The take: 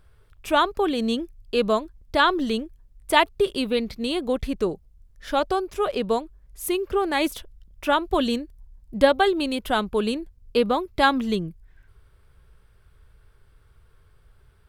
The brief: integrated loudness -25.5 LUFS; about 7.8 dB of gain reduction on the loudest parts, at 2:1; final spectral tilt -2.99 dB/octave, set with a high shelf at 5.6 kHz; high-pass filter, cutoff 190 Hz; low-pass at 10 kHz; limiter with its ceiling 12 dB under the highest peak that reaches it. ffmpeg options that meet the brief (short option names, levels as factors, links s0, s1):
-af "highpass=190,lowpass=10000,highshelf=f=5600:g=-3,acompressor=threshold=0.0501:ratio=2,volume=2.11,alimiter=limit=0.178:level=0:latency=1"